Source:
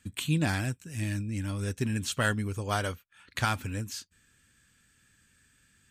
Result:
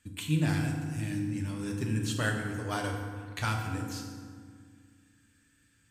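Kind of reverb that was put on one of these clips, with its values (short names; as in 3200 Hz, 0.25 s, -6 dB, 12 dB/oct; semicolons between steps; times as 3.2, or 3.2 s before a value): FDN reverb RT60 1.9 s, low-frequency decay 1.5×, high-frequency decay 0.55×, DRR 0.5 dB; gain -5.5 dB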